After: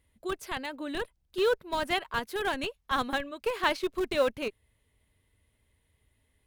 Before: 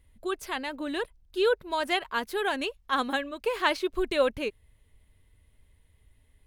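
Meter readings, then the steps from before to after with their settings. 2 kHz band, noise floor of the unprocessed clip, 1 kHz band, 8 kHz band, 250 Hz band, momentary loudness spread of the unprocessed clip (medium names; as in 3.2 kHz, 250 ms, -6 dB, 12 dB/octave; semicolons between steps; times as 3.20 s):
-2.0 dB, -65 dBFS, -1.5 dB, -0.5 dB, -2.5 dB, 8 LU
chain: high-pass 120 Hz 6 dB/octave; in parallel at -5.5 dB: Schmitt trigger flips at -23.5 dBFS; on the sum: trim -2.5 dB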